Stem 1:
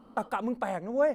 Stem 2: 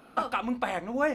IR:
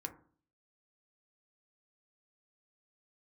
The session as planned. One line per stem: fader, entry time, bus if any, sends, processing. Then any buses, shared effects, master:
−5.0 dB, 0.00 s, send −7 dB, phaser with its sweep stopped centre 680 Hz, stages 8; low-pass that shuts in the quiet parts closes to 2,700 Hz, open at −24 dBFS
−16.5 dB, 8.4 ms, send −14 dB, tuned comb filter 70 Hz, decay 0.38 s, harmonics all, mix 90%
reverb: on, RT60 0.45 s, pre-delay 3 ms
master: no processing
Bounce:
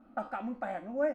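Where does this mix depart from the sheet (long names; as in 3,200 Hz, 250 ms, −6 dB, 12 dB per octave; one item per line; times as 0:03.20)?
stem 2 −16.5 dB → −9.0 dB
master: extra high-shelf EQ 4,600 Hz −11.5 dB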